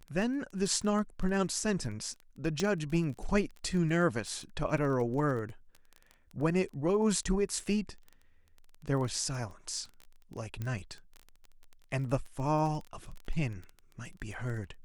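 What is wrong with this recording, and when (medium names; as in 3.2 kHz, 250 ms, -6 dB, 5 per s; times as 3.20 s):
crackle 18 per s -38 dBFS
2.60 s: pop -19 dBFS
10.62 s: pop -24 dBFS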